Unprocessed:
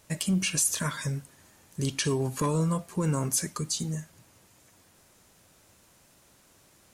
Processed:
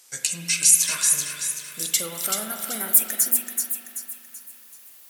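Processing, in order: speed glide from 82% -> 190%; HPF 140 Hz; tilt +4.5 dB/oct; on a send: thin delay 0.382 s, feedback 40%, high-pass 1500 Hz, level -4.5 dB; on the sum: spring tank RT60 2.7 s, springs 41 ms, chirp 65 ms, DRR 4.5 dB; gain -3 dB

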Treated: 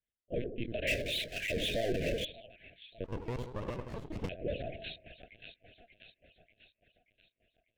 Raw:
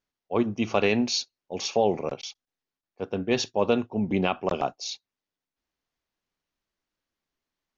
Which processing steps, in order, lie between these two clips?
median-filter separation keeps percussive; on a send: split-band echo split 780 Hz, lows 81 ms, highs 0.588 s, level -10 dB; on the sum: LPC vocoder at 8 kHz pitch kept; limiter -20 dBFS, peak gain reduction 11.5 dB; 0.87–2.25 power-law curve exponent 0.5; Chebyshev band-stop 660–1600 Hz, order 4; 3.04–4.29 running maximum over 33 samples; gain -3.5 dB

